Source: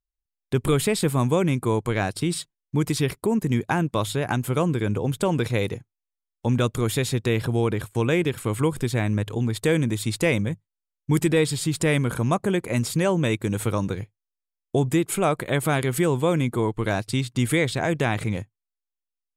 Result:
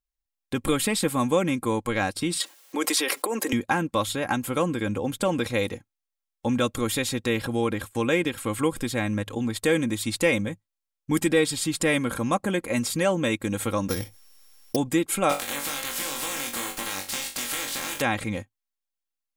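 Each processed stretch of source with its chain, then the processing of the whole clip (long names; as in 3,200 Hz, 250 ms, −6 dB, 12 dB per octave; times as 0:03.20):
0:02.40–0:03.53: high-pass filter 380 Hz 24 dB per octave + envelope flattener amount 70%
0:13.89–0:14.76: samples sorted by size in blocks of 8 samples + high-shelf EQ 8,700 Hz +10 dB + envelope flattener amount 50%
0:15.29–0:18.00: compressing power law on the bin magnitudes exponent 0.27 + downward compressor 10 to 1, threshold −28 dBFS + flutter between parallel walls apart 3.6 metres, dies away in 0.31 s
whole clip: low-shelf EQ 480 Hz −4 dB; comb filter 3.7 ms, depth 59%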